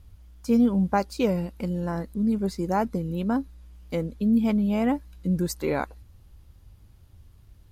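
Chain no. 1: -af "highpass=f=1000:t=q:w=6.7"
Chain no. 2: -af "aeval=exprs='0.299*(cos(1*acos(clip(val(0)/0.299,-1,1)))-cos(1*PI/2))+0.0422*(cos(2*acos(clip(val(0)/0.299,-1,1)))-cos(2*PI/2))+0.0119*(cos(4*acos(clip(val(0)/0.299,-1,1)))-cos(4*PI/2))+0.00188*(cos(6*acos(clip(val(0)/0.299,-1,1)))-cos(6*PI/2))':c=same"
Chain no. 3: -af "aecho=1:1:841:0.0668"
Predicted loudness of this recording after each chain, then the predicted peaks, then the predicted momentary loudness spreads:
-27.0 LUFS, -25.5 LUFS, -26.0 LUFS; -6.0 dBFS, -8.5 dBFS, -10.5 dBFS; 20 LU, 9 LU, 9 LU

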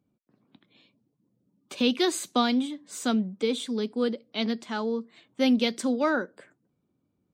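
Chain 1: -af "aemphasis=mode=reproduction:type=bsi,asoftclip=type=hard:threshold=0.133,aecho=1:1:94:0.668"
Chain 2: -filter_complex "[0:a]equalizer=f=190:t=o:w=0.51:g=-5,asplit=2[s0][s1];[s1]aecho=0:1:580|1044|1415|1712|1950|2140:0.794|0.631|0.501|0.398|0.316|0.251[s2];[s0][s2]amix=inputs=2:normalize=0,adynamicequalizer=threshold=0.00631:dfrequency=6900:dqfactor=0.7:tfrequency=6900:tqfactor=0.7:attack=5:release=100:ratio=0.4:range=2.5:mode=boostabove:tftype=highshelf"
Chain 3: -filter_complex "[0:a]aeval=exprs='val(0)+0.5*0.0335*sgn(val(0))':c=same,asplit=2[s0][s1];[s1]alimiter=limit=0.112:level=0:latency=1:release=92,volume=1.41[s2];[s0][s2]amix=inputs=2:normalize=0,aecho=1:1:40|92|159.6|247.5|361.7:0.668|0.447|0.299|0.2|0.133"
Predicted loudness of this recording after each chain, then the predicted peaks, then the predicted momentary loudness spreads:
-24.0 LUFS, -25.0 LUFS, -18.0 LUFS; -13.0 dBFS, -10.5 dBFS, -3.5 dBFS; 6 LU, 4 LU, 11 LU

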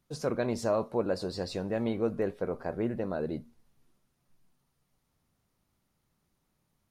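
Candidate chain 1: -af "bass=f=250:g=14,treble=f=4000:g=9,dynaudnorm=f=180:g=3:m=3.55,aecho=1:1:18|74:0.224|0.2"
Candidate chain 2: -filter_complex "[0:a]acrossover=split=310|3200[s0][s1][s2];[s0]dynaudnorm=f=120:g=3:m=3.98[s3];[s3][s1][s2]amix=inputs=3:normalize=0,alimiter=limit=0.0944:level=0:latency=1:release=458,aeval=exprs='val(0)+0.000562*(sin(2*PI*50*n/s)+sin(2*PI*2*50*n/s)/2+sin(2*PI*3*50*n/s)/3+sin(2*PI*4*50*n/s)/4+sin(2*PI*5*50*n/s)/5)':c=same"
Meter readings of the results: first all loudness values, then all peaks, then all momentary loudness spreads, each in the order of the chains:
-17.0 LUFS, -32.5 LUFS; -1.5 dBFS, -20.5 dBFS; 6 LU, 4 LU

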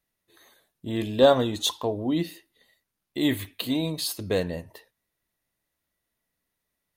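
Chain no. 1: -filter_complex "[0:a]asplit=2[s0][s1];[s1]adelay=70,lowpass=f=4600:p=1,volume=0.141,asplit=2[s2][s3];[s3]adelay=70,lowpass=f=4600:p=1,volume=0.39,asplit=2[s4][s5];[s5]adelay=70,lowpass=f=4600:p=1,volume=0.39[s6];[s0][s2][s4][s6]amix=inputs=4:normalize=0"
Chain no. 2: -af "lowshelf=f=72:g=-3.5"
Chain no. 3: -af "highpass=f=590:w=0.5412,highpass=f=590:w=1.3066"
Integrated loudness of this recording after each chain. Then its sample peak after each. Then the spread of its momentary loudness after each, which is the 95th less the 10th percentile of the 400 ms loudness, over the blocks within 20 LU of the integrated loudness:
-25.5 LUFS, -26.0 LUFS, -29.5 LUFS; -6.5 dBFS, -6.0 dBFS, -9.5 dBFS; 15 LU, 16 LU, 19 LU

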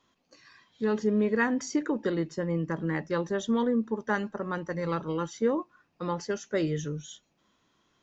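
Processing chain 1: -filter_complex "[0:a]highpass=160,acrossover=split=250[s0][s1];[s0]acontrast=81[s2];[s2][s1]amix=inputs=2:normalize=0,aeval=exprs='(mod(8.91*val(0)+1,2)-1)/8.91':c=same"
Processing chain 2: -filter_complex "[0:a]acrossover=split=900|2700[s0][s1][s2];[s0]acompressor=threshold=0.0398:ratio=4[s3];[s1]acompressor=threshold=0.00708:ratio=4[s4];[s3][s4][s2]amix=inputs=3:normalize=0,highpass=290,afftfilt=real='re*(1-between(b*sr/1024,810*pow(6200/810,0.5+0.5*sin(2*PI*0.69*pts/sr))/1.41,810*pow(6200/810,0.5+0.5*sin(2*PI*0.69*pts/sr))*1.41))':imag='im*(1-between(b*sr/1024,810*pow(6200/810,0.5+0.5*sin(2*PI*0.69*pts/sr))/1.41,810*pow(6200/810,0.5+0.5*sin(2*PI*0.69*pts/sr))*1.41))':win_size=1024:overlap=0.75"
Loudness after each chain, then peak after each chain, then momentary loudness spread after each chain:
-28.0 LUFS, -36.0 LUFS; -19.0 dBFS, -21.0 dBFS; 8 LU, 5 LU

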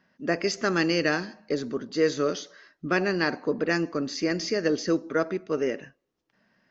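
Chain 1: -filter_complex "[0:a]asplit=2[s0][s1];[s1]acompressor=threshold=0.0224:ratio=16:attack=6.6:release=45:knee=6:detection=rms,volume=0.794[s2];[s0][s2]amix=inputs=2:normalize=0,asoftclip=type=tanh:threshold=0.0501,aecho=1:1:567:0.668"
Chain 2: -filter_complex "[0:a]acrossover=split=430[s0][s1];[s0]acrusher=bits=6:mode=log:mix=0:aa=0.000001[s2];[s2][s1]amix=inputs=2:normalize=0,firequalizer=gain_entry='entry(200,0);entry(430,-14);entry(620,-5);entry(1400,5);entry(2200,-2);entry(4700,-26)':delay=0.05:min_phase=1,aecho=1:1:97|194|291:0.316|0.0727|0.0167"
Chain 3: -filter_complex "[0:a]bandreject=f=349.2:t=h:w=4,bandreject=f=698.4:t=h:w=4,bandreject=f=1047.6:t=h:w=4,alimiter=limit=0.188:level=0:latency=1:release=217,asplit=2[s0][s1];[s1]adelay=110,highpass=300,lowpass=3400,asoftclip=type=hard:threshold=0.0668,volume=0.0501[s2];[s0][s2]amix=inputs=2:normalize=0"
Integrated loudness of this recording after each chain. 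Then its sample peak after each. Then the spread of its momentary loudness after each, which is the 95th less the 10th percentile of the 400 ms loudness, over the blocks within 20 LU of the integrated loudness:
-30.0 LUFS, -30.0 LUFS, -28.5 LUFS; -21.5 dBFS, -11.0 dBFS, -14.5 dBFS; 6 LU, 11 LU, 6 LU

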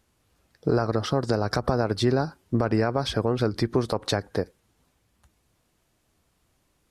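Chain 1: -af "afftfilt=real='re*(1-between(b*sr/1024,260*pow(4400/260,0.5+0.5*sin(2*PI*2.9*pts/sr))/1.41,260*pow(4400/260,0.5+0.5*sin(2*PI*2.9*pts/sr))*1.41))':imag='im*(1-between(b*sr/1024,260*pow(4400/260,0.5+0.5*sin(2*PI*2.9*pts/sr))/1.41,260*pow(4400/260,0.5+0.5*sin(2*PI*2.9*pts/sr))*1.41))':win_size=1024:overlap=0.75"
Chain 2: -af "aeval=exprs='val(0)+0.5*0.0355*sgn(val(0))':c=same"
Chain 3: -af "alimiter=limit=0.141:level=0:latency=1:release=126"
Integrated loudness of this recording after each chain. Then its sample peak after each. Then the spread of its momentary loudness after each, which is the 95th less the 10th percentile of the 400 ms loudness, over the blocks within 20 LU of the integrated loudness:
-26.5 LUFS, -26.0 LUFS, -30.5 LUFS; -10.0 dBFS, -8.5 dBFS, -17.0 dBFS; 4 LU, 12 LU, 4 LU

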